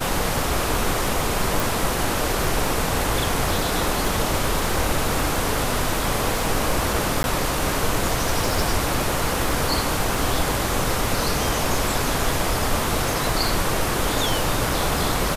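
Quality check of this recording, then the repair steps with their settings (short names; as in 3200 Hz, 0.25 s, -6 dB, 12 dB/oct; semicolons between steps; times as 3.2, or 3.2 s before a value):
crackle 32/s -25 dBFS
1.6 pop
7.23–7.24 gap 11 ms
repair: de-click; interpolate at 7.23, 11 ms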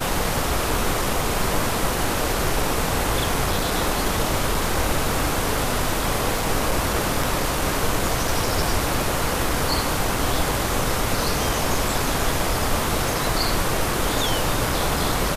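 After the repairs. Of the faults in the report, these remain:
none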